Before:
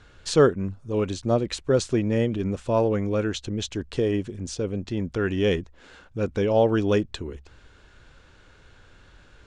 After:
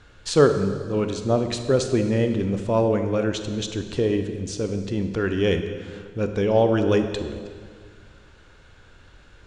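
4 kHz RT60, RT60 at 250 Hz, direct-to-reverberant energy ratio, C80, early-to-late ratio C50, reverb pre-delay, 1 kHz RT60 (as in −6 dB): 1.6 s, 2.2 s, 7.0 dB, 9.0 dB, 8.0 dB, 26 ms, 1.9 s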